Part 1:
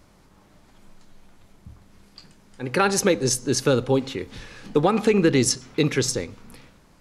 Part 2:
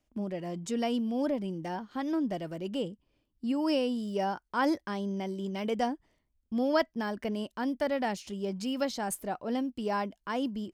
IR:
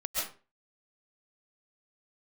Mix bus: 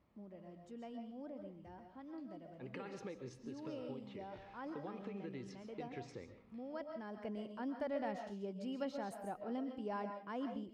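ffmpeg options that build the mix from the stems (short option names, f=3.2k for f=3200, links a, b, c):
-filter_complex "[0:a]lowpass=2.6k,bandreject=f=1.5k:w=6.7,acompressor=threshold=-26dB:ratio=6,volume=-19.5dB,asplit=2[a][b];[b]volume=-12.5dB[c];[1:a]lowpass=f=1.6k:p=1,volume=-12.5dB,afade=t=in:st=6.88:d=0.42:silence=0.354813,asplit=3[d][e][f];[e]volume=-7.5dB[g];[f]apad=whole_len=308921[h];[a][h]sidechaincompress=threshold=-53dB:ratio=8:attack=16:release=118[i];[2:a]atrim=start_sample=2205[j];[c][g]amix=inputs=2:normalize=0[k];[k][j]afir=irnorm=-1:irlink=0[l];[i][d][l]amix=inputs=3:normalize=0,highpass=51"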